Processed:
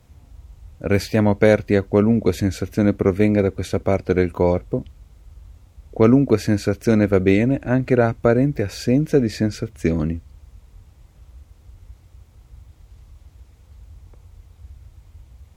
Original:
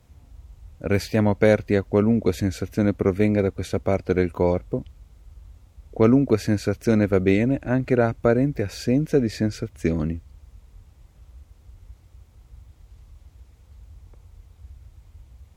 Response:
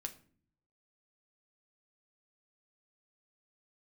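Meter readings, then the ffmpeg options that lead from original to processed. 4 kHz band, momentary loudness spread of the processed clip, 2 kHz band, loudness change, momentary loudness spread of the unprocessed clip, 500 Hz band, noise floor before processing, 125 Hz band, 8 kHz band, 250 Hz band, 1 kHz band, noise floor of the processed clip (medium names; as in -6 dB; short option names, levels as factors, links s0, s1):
+3.0 dB, 8 LU, +3.0 dB, +3.0 dB, 8 LU, +3.0 dB, -54 dBFS, +3.0 dB, +3.0 dB, +3.0 dB, +3.0 dB, -52 dBFS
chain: -filter_complex "[0:a]asplit=2[s0][s1];[1:a]atrim=start_sample=2205,atrim=end_sample=3087[s2];[s1][s2]afir=irnorm=-1:irlink=0,volume=0.282[s3];[s0][s3]amix=inputs=2:normalize=0,volume=1.19"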